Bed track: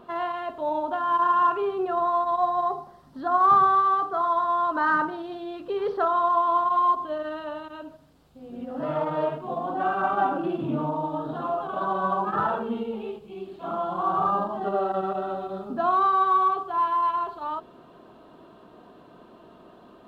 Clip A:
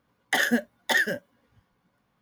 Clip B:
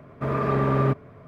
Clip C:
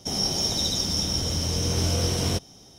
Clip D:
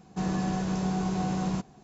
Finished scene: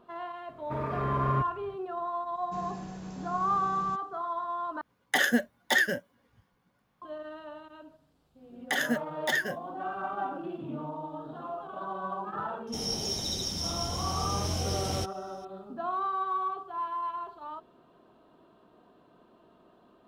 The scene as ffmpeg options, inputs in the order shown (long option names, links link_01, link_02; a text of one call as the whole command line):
ffmpeg -i bed.wav -i cue0.wav -i cue1.wav -i cue2.wav -i cue3.wav -filter_complex "[1:a]asplit=2[link_01][link_02];[0:a]volume=-10dB[link_03];[2:a]asubboost=boost=10:cutoff=110[link_04];[link_03]asplit=2[link_05][link_06];[link_05]atrim=end=4.814[link_07];[link_01]atrim=end=2.21,asetpts=PTS-STARTPTS,volume=-1.5dB[link_08];[link_06]atrim=start=7.016[link_09];[link_04]atrim=end=1.27,asetpts=PTS-STARTPTS,volume=-9dB,afade=type=in:duration=0.004:curve=hsin,afade=type=out:start_time=1.266:duration=0.004:curve=hsin,adelay=490[link_10];[4:a]atrim=end=1.83,asetpts=PTS-STARTPTS,volume=-12dB,afade=type=in:duration=0.004:curve=hsin,afade=type=out:start_time=1.826:duration=0.004:curve=hsin,adelay=2350[link_11];[link_02]atrim=end=2.21,asetpts=PTS-STARTPTS,volume=-5.5dB,afade=type=in:duration=0.004:curve=hsin,afade=type=out:start_time=2.206:duration=0.004:curve=hsin,adelay=8380[link_12];[3:a]atrim=end=2.78,asetpts=PTS-STARTPTS,volume=-7.5dB,afade=type=in:duration=0.004:curve=hsin,afade=type=out:start_time=2.776:duration=0.004:curve=hsin,adelay=12670[link_13];[link_07][link_08]acrossfade=duration=0.004:curve1=hsin:curve2=hsin[link_14];[link_14][link_09]acrossfade=duration=0.004:curve1=hsin:curve2=hsin[link_15];[link_15][link_10][link_11][link_12][link_13]amix=inputs=5:normalize=0" out.wav